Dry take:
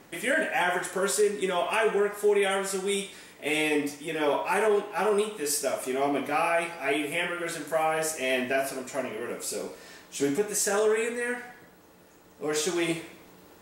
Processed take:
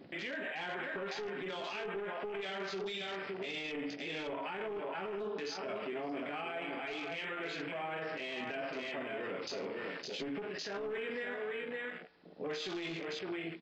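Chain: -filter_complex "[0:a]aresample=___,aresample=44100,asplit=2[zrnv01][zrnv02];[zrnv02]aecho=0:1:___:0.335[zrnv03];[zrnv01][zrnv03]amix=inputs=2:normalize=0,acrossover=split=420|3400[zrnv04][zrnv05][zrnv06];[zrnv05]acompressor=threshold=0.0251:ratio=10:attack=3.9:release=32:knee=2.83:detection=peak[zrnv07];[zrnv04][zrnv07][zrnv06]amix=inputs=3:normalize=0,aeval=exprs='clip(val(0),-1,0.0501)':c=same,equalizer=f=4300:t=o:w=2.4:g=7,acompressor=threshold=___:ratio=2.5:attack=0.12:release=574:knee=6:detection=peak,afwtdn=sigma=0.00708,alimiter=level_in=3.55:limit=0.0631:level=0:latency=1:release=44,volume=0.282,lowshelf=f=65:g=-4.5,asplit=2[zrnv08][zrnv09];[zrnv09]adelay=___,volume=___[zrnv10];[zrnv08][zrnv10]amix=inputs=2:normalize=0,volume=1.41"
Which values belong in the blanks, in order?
11025, 561, 0.0282, 18, 0.2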